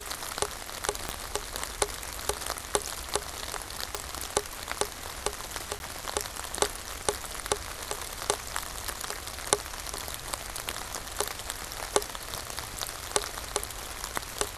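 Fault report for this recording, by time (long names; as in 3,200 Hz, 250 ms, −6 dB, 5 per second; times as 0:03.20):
0:01.09: click −14 dBFS
0:03.95: click
0:05.79–0:05.80: drop-out 11 ms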